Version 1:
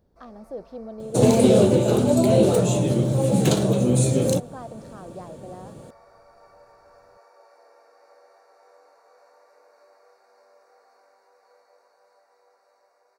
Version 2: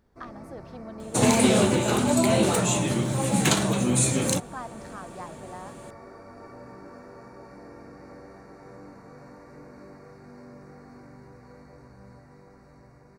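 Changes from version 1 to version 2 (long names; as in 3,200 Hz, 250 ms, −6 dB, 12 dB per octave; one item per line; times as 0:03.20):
first sound: remove high-pass filter 780 Hz 24 dB per octave
master: add octave-band graphic EQ 125/500/1,000/2,000/8,000 Hz −6/−10/+6/+9/+5 dB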